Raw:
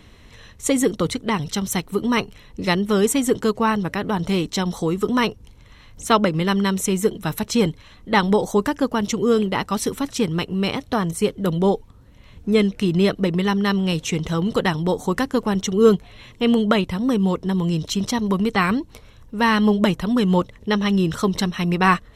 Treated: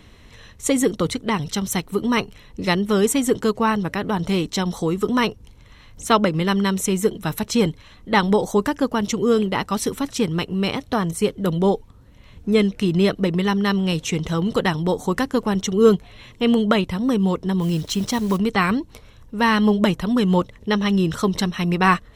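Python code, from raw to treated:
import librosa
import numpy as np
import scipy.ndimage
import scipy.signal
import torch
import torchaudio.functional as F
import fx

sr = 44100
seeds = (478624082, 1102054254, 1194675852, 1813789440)

y = fx.block_float(x, sr, bits=5, at=(17.6, 18.37), fade=0.02)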